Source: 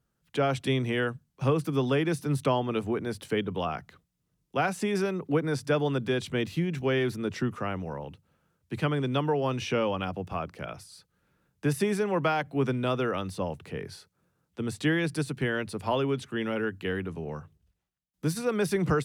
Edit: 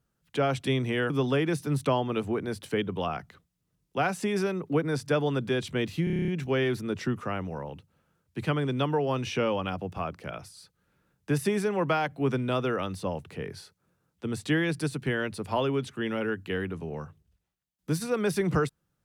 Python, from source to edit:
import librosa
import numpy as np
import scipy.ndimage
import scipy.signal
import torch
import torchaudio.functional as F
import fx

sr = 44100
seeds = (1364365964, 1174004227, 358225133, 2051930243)

y = fx.edit(x, sr, fx.cut(start_s=1.1, length_s=0.59),
    fx.stutter(start_s=6.63, slice_s=0.03, count=9), tone=tone)